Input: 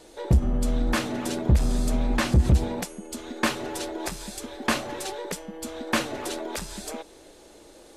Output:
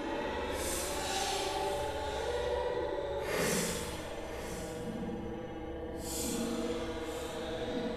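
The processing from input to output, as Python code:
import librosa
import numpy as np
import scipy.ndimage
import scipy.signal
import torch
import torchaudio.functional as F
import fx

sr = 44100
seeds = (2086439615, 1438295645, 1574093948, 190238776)

y = fx.add_hum(x, sr, base_hz=60, snr_db=20)
y = fx.paulstretch(y, sr, seeds[0], factor=8.8, window_s=0.05, from_s=4.93)
y = fx.hum_notches(y, sr, base_hz=50, count=7)
y = y + 10.0 ** (-13.5 / 20.0) * np.pad(y, (int(999 * sr / 1000.0), 0))[:len(y)]
y = fx.rev_spring(y, sr, rt60_s=1.7, pass_ms=(60,), chirp_ms=25, drr_db=-0.5)
y = y * librosa.db_to_amplitude(-4.0)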